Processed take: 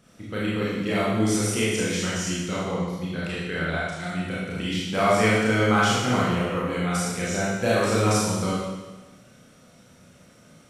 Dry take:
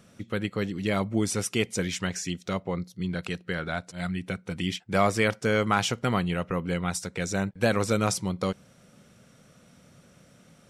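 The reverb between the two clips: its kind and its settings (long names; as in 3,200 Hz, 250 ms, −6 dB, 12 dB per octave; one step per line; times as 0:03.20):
four-comb reverb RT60 1.2 s, combs from 25 ms, DRR −7.5 dB
level −4 dB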